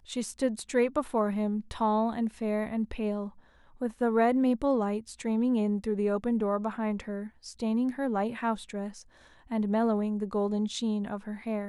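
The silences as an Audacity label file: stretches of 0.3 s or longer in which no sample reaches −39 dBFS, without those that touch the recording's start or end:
3.290000	3.810000	silence
9.020000	9.510000	silence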